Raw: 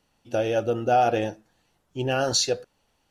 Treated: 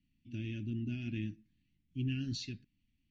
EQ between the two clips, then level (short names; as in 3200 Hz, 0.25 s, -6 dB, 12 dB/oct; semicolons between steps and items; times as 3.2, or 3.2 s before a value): elliptic band-stop 270–2200 Hz, stop band 40 dB; tape spacing loss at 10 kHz 35 dB; -2.5 dB